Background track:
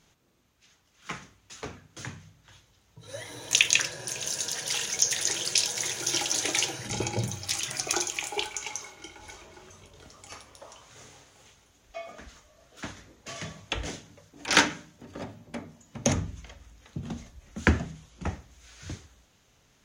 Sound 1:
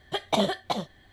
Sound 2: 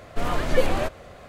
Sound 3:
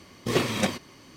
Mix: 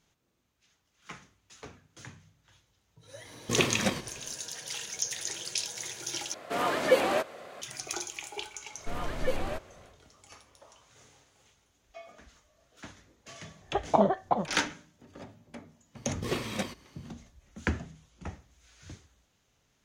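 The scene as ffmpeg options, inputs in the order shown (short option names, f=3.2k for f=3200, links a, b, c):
-filter_complex "[3:a]asplit=2[a][b];[2:a]asplit=2[c][d];[0:a]volume=-8dB[e];[a]asplit=5[f][g][h][i][j];[g]adelay=100,afreqshift=-46,volume=-16dB[k];[h]adelay=200,afreqshift=-92,volume=-22.4dB[l];[i]adelay=300,afreqshift=-138,volume=-28.8dB[m];[j]adelay=400,afreqshift=-184,volume=-35.1dB[n];[f][k][l][m][n]amix=inputs=5:normalize=0[o];[c]highpass=290[p];[1:a]lowpass=f=1k:t=q:w=1.5[q];[e]asplit=2[r][s];[r]atrim=end=6.344[t];[p]atrim=end=1.28[u];[s]atrim=start=7.616[v];[o]atrim=end=1.16,asetpts=PTS-STARTPTS,volume=-3.5dB,afade=t=in:d=0.05,afade=t=out:st=1.11:d=0.05,adelay=3230[w];[d]atrim=end=1.28,asetpts=PTS-STARTPTS,volume=-9.5dB,afade=t=in:d=0.1,afade=t=out:st=1.18:d=0.1,adelay=8700[x];[q]atrim=end=1.12,asetpts=PTS-STARTPTS,volume=-0.5dB,afade=t=in:d=0.004:c=hsin,afade=t=out:st=1.116:d=0.004:c=hsin,adelay=13610[y];[b]atrim=end=1.16,asetpts=PTS-STARTPTS,volume=-8dB,afade=t=in:d=0.004:c=hsin,afade=t=out:st=1.156:d=0.004:c=hsin,adelay=15960[z];[t][u]acrossfade=d=0.004:c1=hsin:c2=hsin[aa];[aa][v]acrossfade=d=0.004:c1=hsin:c2=hsin[ab];[ab][w][x][y][z]amix=inputs=5:normalize=0"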